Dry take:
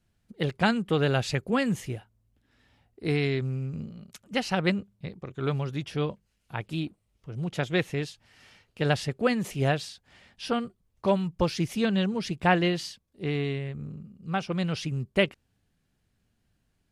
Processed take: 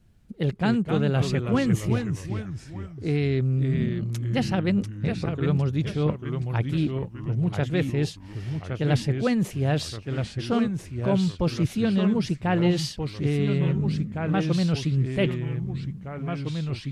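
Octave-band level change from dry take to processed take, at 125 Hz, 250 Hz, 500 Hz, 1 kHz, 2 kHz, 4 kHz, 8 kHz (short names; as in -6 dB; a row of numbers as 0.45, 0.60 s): +7.5, +5.5, +1.0, -2.0, -3.0, -0.5, +2.0 dB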